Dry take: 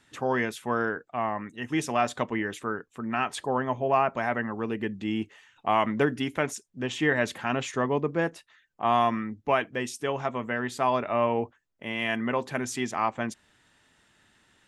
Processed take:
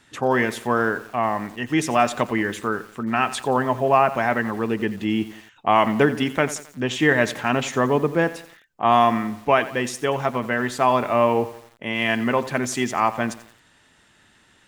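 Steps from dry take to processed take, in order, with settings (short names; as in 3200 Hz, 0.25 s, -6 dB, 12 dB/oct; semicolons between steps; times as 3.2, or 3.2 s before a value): lo-fi delay 88 ms, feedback 55%, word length 7-bit, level -15 dB; gain +6.5 dB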